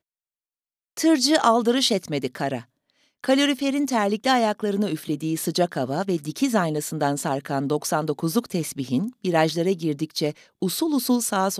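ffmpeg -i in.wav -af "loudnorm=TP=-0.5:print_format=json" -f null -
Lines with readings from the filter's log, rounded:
"input_i" : "-23.4",
"input_tp" : "-4.2",
"input_lra" : "1.5",
"input_thresh" : "-33.6",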